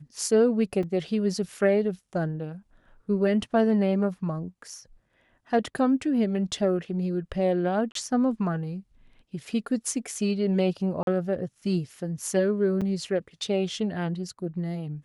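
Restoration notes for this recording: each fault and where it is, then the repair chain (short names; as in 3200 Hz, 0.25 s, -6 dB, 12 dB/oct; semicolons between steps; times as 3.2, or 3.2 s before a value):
0.83 gap 3.8 ms
7.92–7.95 gap 33 ms
11.03–11.07 gap 42 ms
12.81–12.82 gap 6.3 ms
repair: interpolate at 0.83, 3.8 ms; interpolate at 7.92, 33 ms; interpolate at 11.03, 42 ms; interpolate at 12.81, 6.3 ms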